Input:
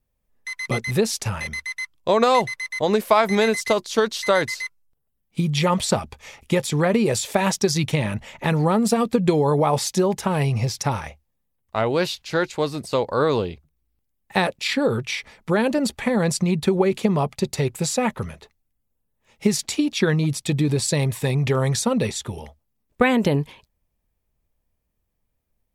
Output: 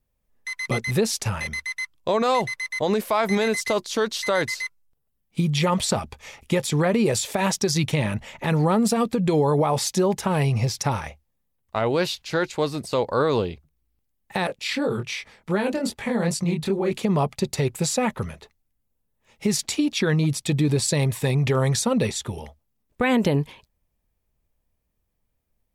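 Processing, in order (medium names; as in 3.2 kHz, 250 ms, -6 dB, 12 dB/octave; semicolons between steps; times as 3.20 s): peak limiter -12 dBFS, peak gain reduction 8 dB; 14.47–16.91 s: chorus 2.6 Hz, delay 19.5 ms, depth 6.7 ms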